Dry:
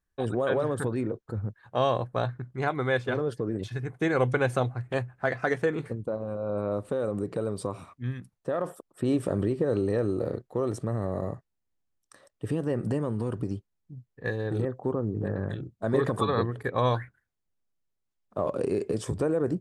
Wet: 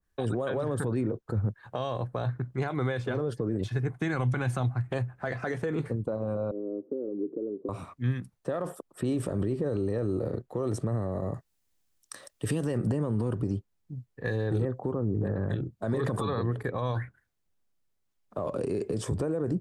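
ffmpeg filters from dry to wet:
ffmpeg -i in.wav -filter_complex "[0:a]asettb=1/sr,asplit=3[link_01][link_02][link_03];[link_01]atrim=end=3.924[link_04];[link_02]atrim=start=3.92:end=4.91,asetpts=PTS-STARTPTS,afade=type=in:duration=0.004:curve=qsin,afade=type=out:start_time=0.986:duration=0.004:curve=qsin,equalizer=frequency=470:width_type=o:width=0.75:gain=-10.5[link_05];[link_03]atrim=start=4.906[link_06];[link_04][link_05]acrossfade=duration=0.004:curve1=hsin:curve2=qsin[link_07];[link_07][link_06]acrossfade=duration=0.004:curve1=qsin:curve2=hsin,asettb=1/sr,asplit=3[link_08][link_09][link_10];[link_08]atrim=end=6.514[link_11];[link_09]atrim=start=6.51:end=7.69,asetpts=PTS-STARTPTS,afade=type=in:duration=0.004:curve=qsin,afade=type=out:start_time=1.176:duration=0.004:curve=qsin,asuperpass=centerf=330:order=4:qfactor=2.2[link_12];[link_10]atrim=start=7.686[link_13];[link_11][link_12]acrossfade=duration=0.004:curve1=hsin:curve2=qsin[link_14];[link_14][link_13]acrossfade=duration=0.004:curve1=qsin:curve2=hsin,asettb=1/sr,asplit=3[link_15][link_16][link_17];[link_15]atrim=end=11.344[link_18];[link_16]atrim=start=11.34:end=12.78,asetpts=PTS-STARTPTS,afade=type=in:duration=0.004:curve=qsin,afade=type=out:start_time=1.436:duration=0.004:curve=qsin,highshelf=frequency=2300:gain=10[link_19];[link_17]atrim=start=12.776[link_20];[link_18][link_19]acrossfade=duration=0.004:curve1=hsin:curve2=qsin[link_21];[link_21][link_20]acrossfade=duration=0.004:curve1=qsin:curve2=hsin,alimiter=limit=-23dB:level=0:latency=1:release=32,acrossover=split=220|3000[link_22][link_23][link_24];[link_23]acompressor=threshold=-36dB:ratio=2[link_25];[link_22][link_25][link_24]amix=inputs=3:normalize=0,adynamicequalizer=threshold=0.00224:dfrequency=1600:dqfactor=0.7:tfrequency=1600:tqfactor=0.7:attack=5:release=100:ratio=0.375:range=2.5:mode=cutabove:tftype=highshelf,volume=4.5dB" out.wav

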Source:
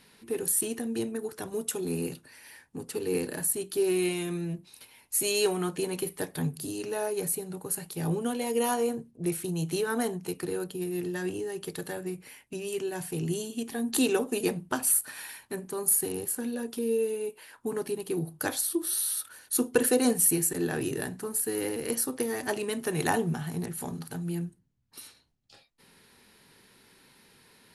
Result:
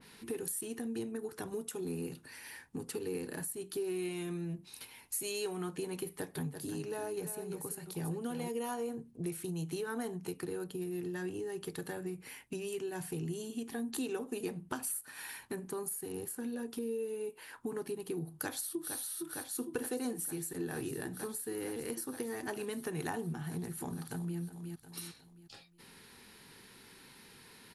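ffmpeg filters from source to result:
ffmpeg -i in.wav -filter_complex "[0:a]asplit=3[link_01][link_02][link_03];[link_01]afade=type=out:start_time=6.36:duration=0.02[link_04];[link_02]aecho=1:1:338:0.376,afade=type=in:start_time=6.36:duration=0.02,afade=type=out:start_time=8.48:duration=0.02[link_05];[link_03]afade=type=in:start_time=8.48:duration=0.02[link_06];[link_04][link_05][link_06]amix=inputs=3:normalize=0,asplit=2[link_07][link_08];[link_08]afade=type=in:start_time=18.29:duration=0.01,afade=type=out:start_time=18.97:duration=0.01,aecho=0:1:460|920|1380|1840|2300|2760|3220|3680|4140|4600|5060|5520:0.501187|0.426009|0.362108|0.307792|0.261623|0.222379|0.189023|0.160669|0.136569|0.116083|0.0986709|0.0838703[link_09];[link_07][link_09]amix=inputs=2:normalize=0,asplit=2[link_10][link_11];[link_11]afade=type=in:start_time=23.8:duration=0.01,afade=type=out:start_time=24.39:duration=0.01,aecho=0:1:360|720|1080|1440:0.211349|0.0845396|0.0338158|0.0135263[link_12];[link_10][link_12]amix=inputs=2:normalize=0,equalizer=frequency=590:width_type=o:width=0.38:gain=-5,acompressor=threshold=-41dB:ratio=3,adynamicequalizer=threshold=0.00112:dfrequency=2100:dqfactor=0.7:tfrequency=2100:tqfactor=0.7:attack=5:release=100:ratio=0.375:range=2:mode=cutabove:tftype=highshelf,volume=2.5dB" out.wav

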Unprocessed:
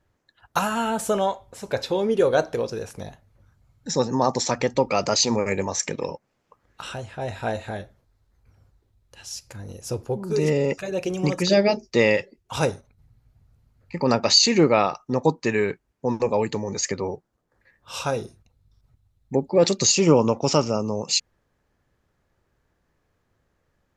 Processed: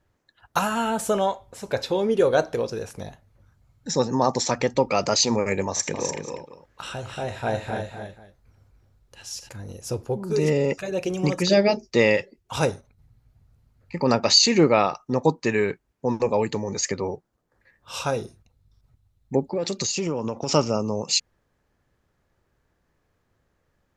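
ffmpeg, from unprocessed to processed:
ffmpeg -i in.wav -filter_complex "[0:a]asettb=1/sr,asplit=3[link_01][link_02][link_03];[link_01]atrim=end=5.684[link_04];[link_02]atrim=start=5.68:end=9.49,asetpts=PTS-STARTPTS,afade=type=in:duration=0.004:curve=qsin,afade=type=out:start_time=3.806:duration=0.004:curve=qsin,aecho=1:1:80|256|295|487:0.224|0.376|0.422|0.133,atrim=end_sample=168021[link_05];[link_03]atrim=start=9.486[link_06];[link_04][link_05]acrossfade=duration=0.004:curve1=hsin:curve2=qsin[link_07];[link_07][link_06]acrossfade=duration=0.004:curve1=qsin:curve2=hsin,asettb=1/sr,asplit=3[link_08][link_09][link_10];[link_08]atrim=end=19.524[link_11];[link_09]atrim=start=19.52:end=20.49,asetpts=PTS-STARTPTS,afade=type=in:duration=0.004:curve=qsin,afade=type=out:start_time=0.966:duration=0.004:curve=qsin,acompressor=threshold=-23dB:ratio=5:attack=3.2:release=140:knee=1:detection=peak[link_12];[link_10]atrim=start=20.486[link_13];[link_11][link_12]acrossfade=duration=0.004:curve1=hsin:curve2=qsin[link_14];[link_14][link_13]acrossfade=duration=0.004:curve1=qsin:curve2=hsin" out.wav

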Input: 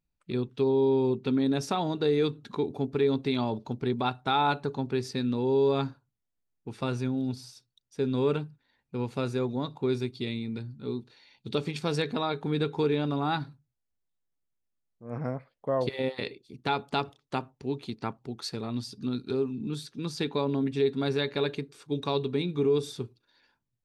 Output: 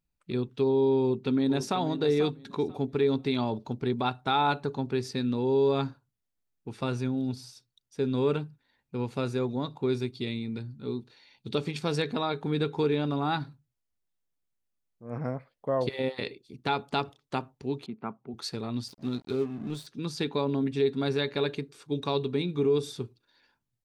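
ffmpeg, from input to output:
ffmpeg -i in.wav -filter_complex "[0:a]asplit=2[link_01][link_02];[link_02]afade=type=in:start_time=1:duration=0.01,afade=type=out:start_time=1.8:duration=0.01,aecho=0:1:490|980|1470:0.266073|0.0532145|0.0106429[link_03];[link_01][link_03]amix=inputs=2:normalize=0,asettb=1/sr,asplit=3[link_04][link_05][link_06];[link_04]atrim=end=17.864[link_07];[link_05]atrim=start=17.86:end=18.34,asetpts=PTS-STARTPTS,afade=type=in:duration=0.004:curve=qsin,afade=type=out:start_time=0.476:duration=0.004:curve=qsin,highpass=190,equalizer=frequency=210:width_type=q:width=4:gain=4,equalizer=frequency=300:width_type=q:width=4:gain=-7,equalizer=frequency=510:width_type=q:width=4:gain=-5,equalizer=frequency=860:width_type=q:width=4:gain=-4,equalizer=frequency=1800:width_type=q:width=4:gain=-10,lowpass=frequency=2100:width=0.5412,lowpass=frequency=2100:width=1.3066[link_08];[link_06]atrim=start=18.336[link_09];[link_07][link_08]acrossfade=duration=0.004:curve1=hsin:curve2=qsin[link_10];[link_10][link_09]acrossfade=duration=0.004:curve1=qsin:curve2=hsin,asettb=1/sr,asplit=3[link_11][link_12][link_13];[link_11]atrim=end=18.884[link_14];[link_12]atrim=start=18.88:end=19.87,asetpts=PTS-STARTPTS,afade=type=in:duration=0.004:curve=qsin,afade=type=out:start_time=0.986:duration=0.004:curve=qsin,aeval=exprs='sgn(val(0))*max(abs(val(0))-0.00473,0)':channel_layout=same[link_15];[link_13]atrim=start=19.866[link_16];[link_14][link_15]acrossfade=duration=0.004:curve1=hsin:curve2=qsin[link_17];[link_17][link_16]acrossfade=duration=0.004:curve1=qsin:curve2=hsin" out.wav

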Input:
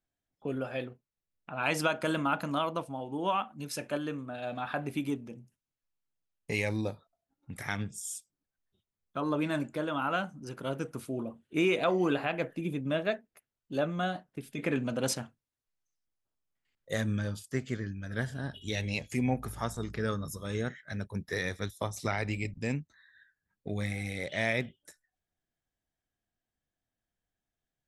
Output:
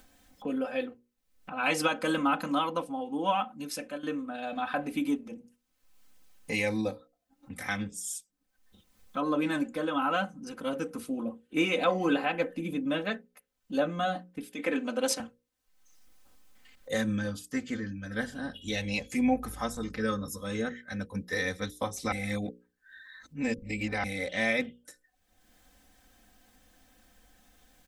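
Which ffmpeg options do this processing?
ffmpeg -i in.wav -filter_complex "[0:a]asettb=1/sr,asplit=3[link_01][link_02][link_03];[link_01]atrim=end=14.434[link_04];[link_02]atrim=start=14.43:end=15.2,asetpts=PTS-STARTPTS,afade=type=in:duration=0.004:curve=qsin,afade=type=out:start_time=0.766:duration=0.004:curve=qsin,highpass=290[link_05];[link_03]atrim=start=15.196[link_06];[link_04][link_05]acrossfade=duration=0.004:curve1=hsin:curve2=qsin[link_07];[link_07][link_06]acrossfade=duration=0.004:curve1=qsin:curve2=hsin,asplit=4[link_08][link_09][link_10][link_11];[link_08]atrim=end=4.03,asetpts=PTS-STARTPTS,afade=type=out:start_time=3.52:duration=0.51:curve=qsin:silence=0.237137[link_12];[link_09]atrim=start=4.03:end=22.122,asetpts=PTS-STARTPTS,afade=type=in:duration=0.004:curve=hsin:silence=0.237137[link_13];[link_10]atrim=start=22.118:end=24.042,asetpts=PTS-STARTPTS,areverse[link_14];[link_11]atrim=start=24.038[link_15];[link_12][link_13]concat=n=2:v=0:a=1[link_16];[link_16][link_14]acrossfade=duration=0.004:curve1=hsin:curve2=hsin[link_17];[link_17][link_15]acrossfade=duration=0.004:curve1=hsin:curve2=hsin,acompressor=mode=upward:threshold=-43dB:ratio=2.5,bandreject=frequency=60:width_type=h:width=6,bandreject=frequency=120:width_type=h:width=6,bandreject=frequency=180:width_type=h:width=6,bandreject=frequency=240:width_type=h:width=6,bandreject=frequency=300:width_type=h:width=6,bandreject=frequency=360:width_type=h:width=6,bandreject=frequency=420:width_type=h:width=6,bandreject=frequency=480:width_type=h:width=6,bandreject=frequency=540:width_type=h:width=6,aecho=1:1:3.9:0.89" out.wav

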